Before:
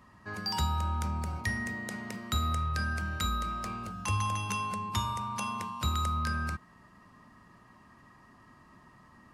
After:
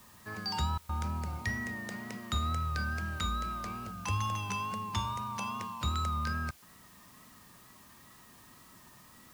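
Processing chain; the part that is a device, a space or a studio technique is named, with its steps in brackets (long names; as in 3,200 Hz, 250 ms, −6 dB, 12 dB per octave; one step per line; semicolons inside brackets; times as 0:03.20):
worn cassette (low-pass filter 7,700 Hz; tape wow and flutter; tape dropouts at 0:00.78/0:06.51, 110 ms −30 dB; white noise bed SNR 23 dB)
level −2 dB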